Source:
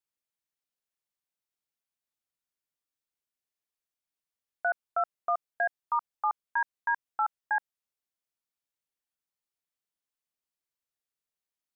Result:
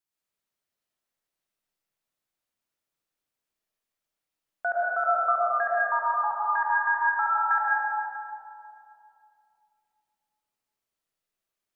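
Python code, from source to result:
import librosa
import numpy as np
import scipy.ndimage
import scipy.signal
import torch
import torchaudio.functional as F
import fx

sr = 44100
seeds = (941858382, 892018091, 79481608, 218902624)

y = fx.rev_freeverb(x, sr, rt60_s=2.7, hf_ratio=0.35, predelay_ms=65, drr_db=-6.0)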